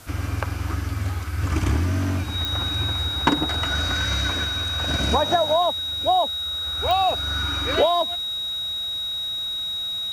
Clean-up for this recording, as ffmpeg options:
-af "adeclick=t=4,bandreject=f=3800:w=30,afwtdn=0.0045"

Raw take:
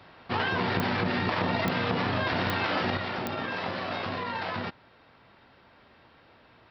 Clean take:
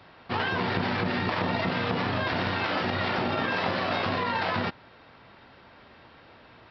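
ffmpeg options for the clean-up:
-af "adeclick=t=4,asetnsamples=n=441:p=0,asendcmd='2.97 volume volume 5dB',volume=1"

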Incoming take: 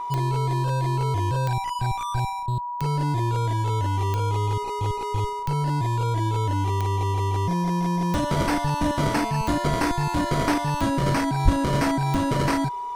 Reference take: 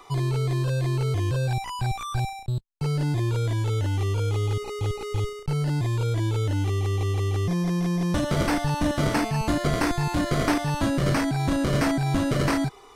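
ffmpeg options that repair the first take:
-filter_complex "[0:a]adeclick=t=4,bandreject=f=970:w=30,asplit=3[s0][s1][s2];[s0]afade=t=out:st=11.44:d=0.02[s3];[s1]highpass=f=140:w=0.5412,highpass=f=140:w=1.3066,afade=t=in:st=11.44:d=0.02,afade=t=out:st=11.56:d=0.02[s4];[s2]afade=t=in:st=11.56:d=0.02[s5];[s3][s4][s5]amix=inputs=3:normalize=0"

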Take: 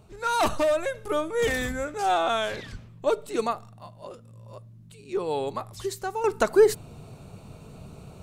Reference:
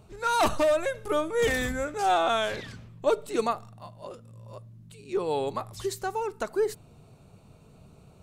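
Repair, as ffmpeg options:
-filter_complex "[0:a]asplit=3[s0][s1][s2];[s0]afade=t=out:st=2.71:d=0.02[s3];[s1]highpass=f=140:w=0.5412,highpass=f=140:w=1.3066,afade=t=in:st=2.71:d=0.02,afade=t=out:st=2.83:d=0.02[s4];[s2]afade=t=in:st=2.83:d=0.02[s5];[s3][s4][s5]amix=inputs=3:normalize=0,asetnsamples=n=441:p=0,asendcmd='6.24 volume volume -9dB',volume=1"

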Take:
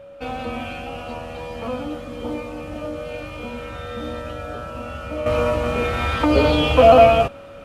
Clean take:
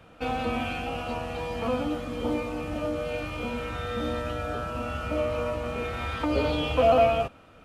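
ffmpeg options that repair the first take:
-af "bandreject=f=560:w=30,asetnsamples=n=441:p=0,asendcmd='5.26 volume volume -9.5dB',volume=1"

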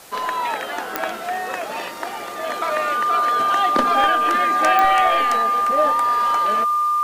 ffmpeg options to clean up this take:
-af "adeclick=t=4,bandreject=f=1200:w=30,afwtdn=0.0063"

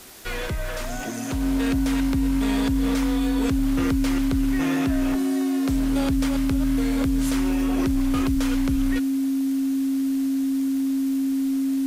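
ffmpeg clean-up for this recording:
-af "adeclick=t=4,bandreject=f=270:w=30,afwtdn=0.0063"

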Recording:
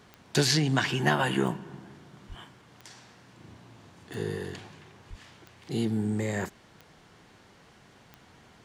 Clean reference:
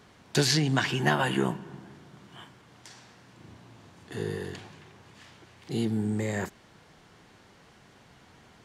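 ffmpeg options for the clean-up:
-filter_complex "[0:a]adeclick=t=4,asplit=3[s0][s1][s2];[s0]afade=t=out:st=2.28:d=0.02[s3];[s1]highpass=f=140:w=0.5412,highpass=f=140:w=1.3066,afade=t=in:st=2.28:d=0.02,afade=t=out:st=2.4:d=0.02[s4];[s2]afade=t=in:st=2.4:d=0.02[s5];[s3][s4][s5]amix=inputs=3:normalize=0,asplit=3[s6][s7][s8];[s6]afade=t=out:st=5.09:d=0.02[s9];[s7]highpass=f=140:w=0.5412,highpass=f=140:w=1.3066,afade=t=in:st=5.09:d=0.02,afade=t=out:st=5.21:d=0.02[s10];[s8]afade=t=in:st=5.21:d=0.02[s11];[s9][s10][s11]amix=inputs=3:normalize=0"

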